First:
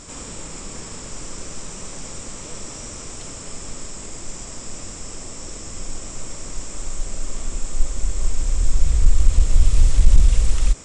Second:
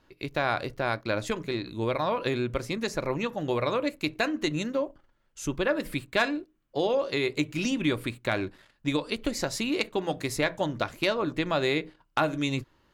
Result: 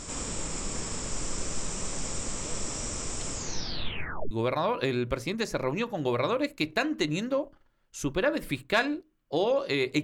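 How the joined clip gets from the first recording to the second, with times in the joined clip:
first
0:03.33: tape stop 0.98 s
0:04.31: continue with second from 0:01.74

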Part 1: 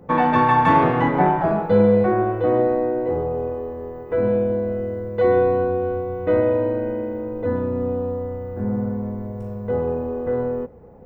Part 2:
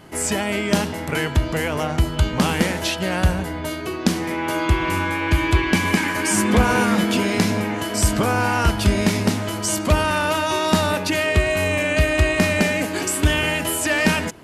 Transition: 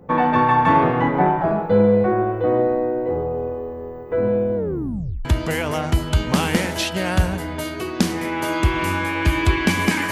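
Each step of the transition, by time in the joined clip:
part 1
0:04.56: tape stop 0.69 s
0:05.25: continue with part 2 from 0:01.31

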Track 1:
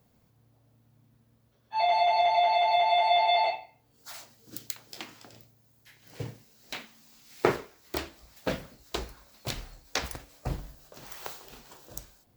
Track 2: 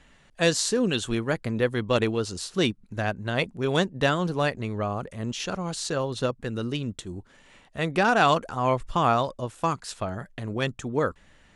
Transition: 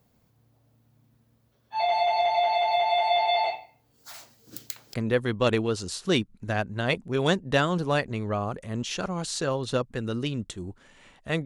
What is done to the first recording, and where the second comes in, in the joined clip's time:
track 1
0:04.94: continue with track 2 from 0:01.43

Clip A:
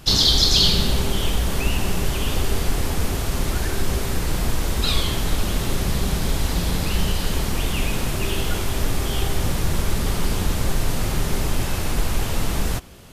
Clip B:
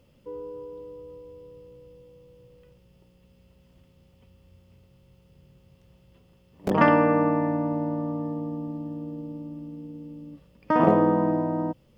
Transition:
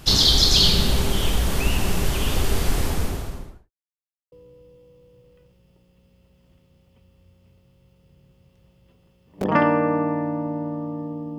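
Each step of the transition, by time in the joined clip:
clip A
0:02.77–0:03.71: fade out and dull
0:03.71–0:04.32: silence
0:04.32: continue with clip B from 0:01.58

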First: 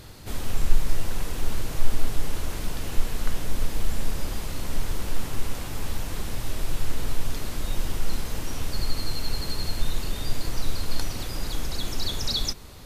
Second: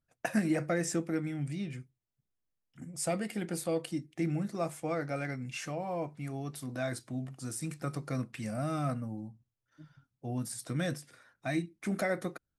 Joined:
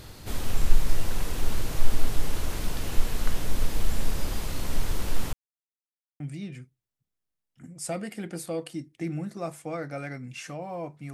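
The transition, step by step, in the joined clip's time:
first
0:05.33–0:06.20: silence
0:06.20: continue with second from 0:01.38

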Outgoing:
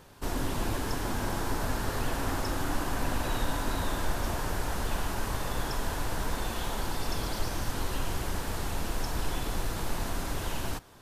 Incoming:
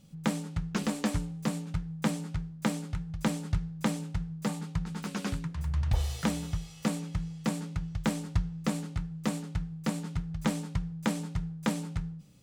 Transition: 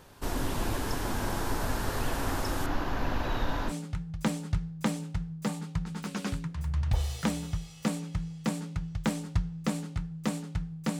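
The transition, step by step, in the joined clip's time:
outgoing
0:02.66–0:03.73: moving average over 5 samples
0:03.70: continue with incoming from 0:02.70, crossfade 0.06 s

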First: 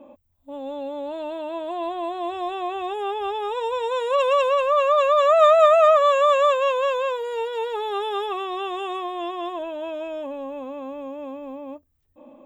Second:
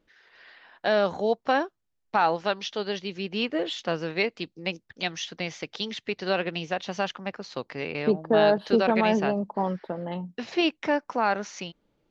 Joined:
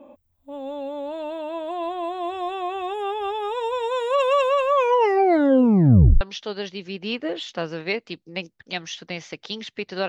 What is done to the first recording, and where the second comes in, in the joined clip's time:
first
0:04.69: tape stop 1.52 s
0:06.21: continue with second from 0:02.51

